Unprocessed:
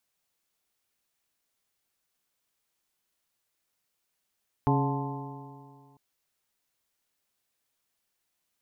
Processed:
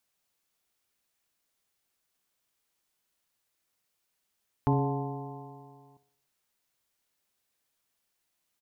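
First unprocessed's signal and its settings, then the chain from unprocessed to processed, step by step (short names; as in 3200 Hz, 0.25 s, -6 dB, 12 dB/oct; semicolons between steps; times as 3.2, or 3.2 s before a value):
stretched partials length 1.30 s, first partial 137 Hz, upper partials -2.5/-6.5/-18/-9.5/-3.5/-9 dB, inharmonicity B 0.0038, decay 2.09 s, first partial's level -23 dB
feedback echo 60 ms, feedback 56%, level -14 dB; dynamic EQ 1600 Hz, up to -5 dB, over -45 dBFS, Q 0.75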